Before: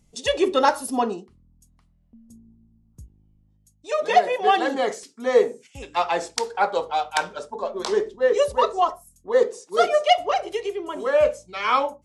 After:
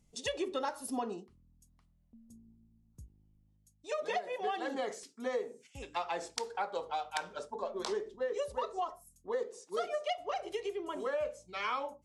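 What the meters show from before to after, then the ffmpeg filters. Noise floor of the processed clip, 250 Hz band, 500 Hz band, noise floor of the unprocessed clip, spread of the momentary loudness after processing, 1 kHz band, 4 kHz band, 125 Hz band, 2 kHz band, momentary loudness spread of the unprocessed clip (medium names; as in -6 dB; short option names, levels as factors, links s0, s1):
-70 dBFS, -12.0 dB, -15.0 dB, -62 dBFS, 6 LU, -15.5 dB, -14.0 dB, -10.5 dB, -14.0 dB, 9 LU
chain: -af "acompressor=threshold=0.0631:ratio=6,volume=0.398"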